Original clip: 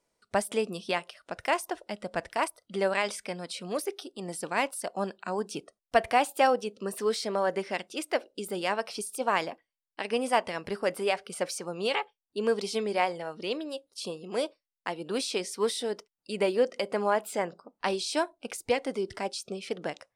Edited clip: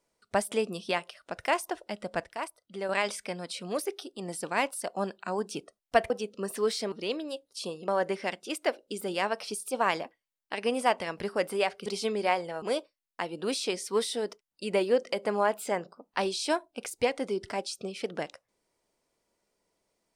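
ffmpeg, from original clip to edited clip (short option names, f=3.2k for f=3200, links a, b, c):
-filter_complex "[0:a]asplit=8[a][b][c][d][e][f][g][h];[a]atrim=end=2.242[i];[b]atrim=start=2.238:end=2.892,asetpts=PTS-STARTPTS,volume=-7dB[j];[c]atrim=start=2.888:end=6.102[k];[d]atrim=start=6.528:end=7.352[l];[e]atrim=start=13.328:end=14.292[m];[f]atrim=start=7.348:end=11.332[n];[g]atrim=start=12.568:end=13.332[o];[h]atrim=start=14.288[p];[i][j]acrossfade=d=0.004:c1=hsin:c2=hsin[q];[q][k]acrossfade=d=0.004:c1=hsin:c2=hsin[r];[r][l]acrossfade=d=0.004:c1=hsin:c2=hsin[s];[s][m]acrossfade=d=0.004:c1=hsin:c2=hsin[t];[t][n]acrossfade=d=0.004:c1=hsin:c2=hsin[u];[u][o]acrossfade=d=0.004:c1=hsin:c2=hsin[v];[v][p]acrossfade=d=0.004:c1=hsin:c2=hsin"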